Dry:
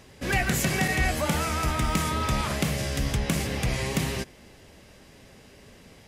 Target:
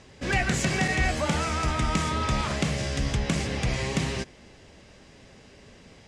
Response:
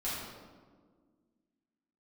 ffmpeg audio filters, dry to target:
-af "lowpass=frequency=8100:width=0.5412,lowpass=frequency=8100:width=1.3066"

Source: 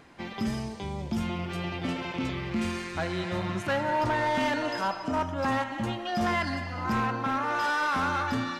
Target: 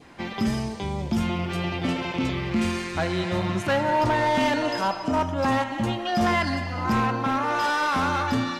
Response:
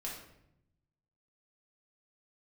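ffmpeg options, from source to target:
-af "adynamicequalizer=threshold=0.00794:dfrequency=1500:dqfactor=1.6:tfrequency=1500:tqfactor=1.6:attack=5:release=100:ratio=0.375:range=2:mode=cutabove:tftype=bell,volume=5.5dB"

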